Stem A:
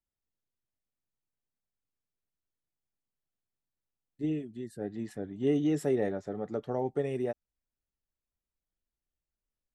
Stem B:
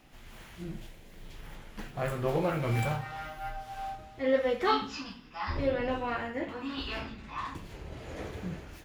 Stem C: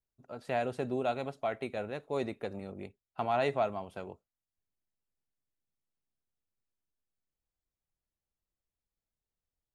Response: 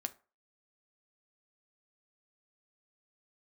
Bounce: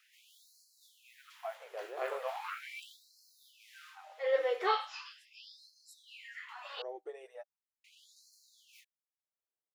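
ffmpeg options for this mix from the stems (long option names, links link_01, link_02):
-filter_complex "[0:a]aecho=1:1:6.2:0.57,adelay=100,volume=-11.5dB[link_01];[1:a]acrossover=split=5100[link_02][link_03];[link_03]acompressor=threshold=-57dB:ratio=4:attack=1:release=60[link_04];[link_02][link_04]amix=inputs=2:normalize=0,volume=-3dB,asplit=3[link_05][link_06][link_07];[link_05]atrim=end=6.82,asetpts=PTS-STARTPTS,afade=type=out:start_time=6.816:duration=0.004:curve=hsin[link_08];[link_06]atrim=start=6.82:end=7.84,asetpts=PTS-STARTPTS,volume=0[link_09];[link_07]atrim=start=7.84,asetpts=PTS-STARTPTS,afade=type=in:duration=0.004:curve=hsin[link_10];[link_08][link_09][link_10]concat=n=3:v=0:a=1[link_11];[2:a]lowpass=1500,volume=-5.5dB,asplit=2[link_12][link_13];[link_13]apad=whole_len=434446[link_14];[link_01][link_14]sidechaincompress=threshold=-51dB:ratio=8:attack=16:release=1380[link_15];[link_15][link_11][link_12]amix=inputs=3:normalize=0,afftfilt=real='re*gte(b*sr/1024,330*pow(4100/330,0.5+0.5*sin(2*PI*0.39*pts/sr)))':imag='im*gte(b*sr/1024,330*pow(4100/330,0.5+0.5*sin(2*PI*0.39*pts/sr)))':win_size=1024:overlap=0.75"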